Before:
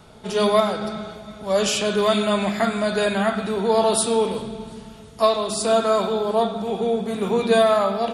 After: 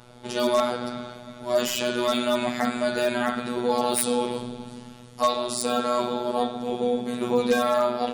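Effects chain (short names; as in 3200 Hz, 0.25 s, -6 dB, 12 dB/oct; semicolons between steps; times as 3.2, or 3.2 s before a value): robotiser 122 Hz; wavefolder -9.5 dBFS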